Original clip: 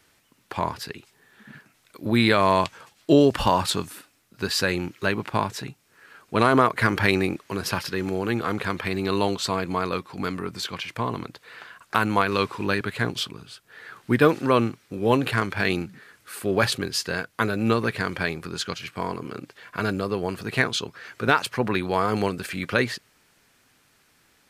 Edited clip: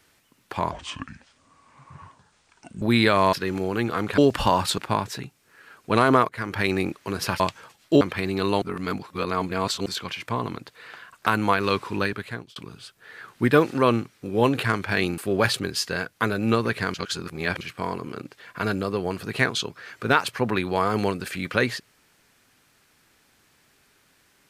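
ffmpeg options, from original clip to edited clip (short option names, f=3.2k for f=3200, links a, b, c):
-filter_complex "[0:a]asplit=15[a][b][c][d][e][f][g][h][i][j][k][l][m][n][o];[a]atrim=end=0.714[p];[b]atrim=start=0.71:end=2.06,asetpts=PTS-STARTPTS,asetrate=28224,aresample=44100,atrim=end_sample=93023,asetpts=PTS-STARTPTS[q];[c]atrim=start=2.056:end=2.572[r];[d]atrim=start=7.838:end=8.692[s];[e]atrim=start=3.178:end=3.782[t];[f]atrim=start=5.218:end=6.73,asetpts=PTS-STARTPTS,afade=t=out:st=1.508:d=0.004:c=hsin:silence=0.141254[u];[g]atrim=start=6.73:end=7.842,asetpts=PTS-STARTPTS,afade=t=in:d=0.58:silence=0.141254[v];[h]atrim=start=2.568:end=3.182[w];[i]atrim=start=8.688:end=9.302[x];[j]atrim=start=9.298:end=10.542,asetpts=PTS-STARTPTS,areverse[y];[k]atrim=start=10.538:end=13.24,asetpts=PTS-STARTPTS,afade=t=out:st=2.122:d=0.58[z];[l]atrim=start=13.24:end=15.862,asetpts=PTS-STARTPTS,afade=t=in:d=0.004:c=hsin[aa];[m]atrim=start=16.358:end=18.122[ab];[n]atrim=start=18.118:end=18.792,asetpts=PTS-STARTPTS,areverse[ac];[o]atrim=start=18.788[ad];[p][q]acrossfade=d=0.004:c1=hsin:c2=hsin[ae];[ae][r]acrossfade=d=0.004:c1=hsin:c2=hsin[af];[af][s]acrossfade=d=0.004:c1=hsin:c2=hsin[ag];[ag][t]acrossfade=d=0.004:c1=hsin:c2=hsin[ah];[u][v]concat=n=2:v=0:a=1[ai];[ah][ai]acrossfade=d=0.004:c1=hsin:c2=hsin[aj];[aj][w]acrossfade=d=0.004:c1=hsin:c2=hsin[ak];[ak][x]acrossfade=d=0.004:c1=hsin:c2=hsin[al];[al][y]acrossfade=d=0.004:c1=hsin:c2=hsin[am];[z][aa]concat=n=2:v=0:a=1[an];[am][an]acrossfade=d=0.004:c1=hsin:c2=hsin[ao];[ao][ab]acrossfade=d=0.004:c1=hsin:c2=hsin[ap];[ap][ac]acrossfade=d=0.004:c1=hsin:c2=hsin[aq];[aq][ad]acrossfade=d=0.004:c1=hsin:c2=hsin"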